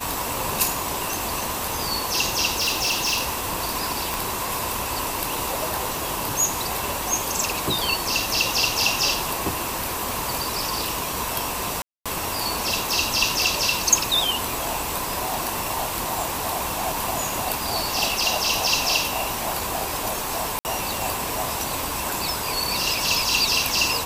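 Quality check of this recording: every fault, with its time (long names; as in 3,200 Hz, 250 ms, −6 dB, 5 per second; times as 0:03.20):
0:02.51–0:03.34: clipping −18.5 dBFS
0:04.14: click
0:11.82–0:12.06: drop-out 236 ms
0:20.59–0:20.65: drop-out 59 ms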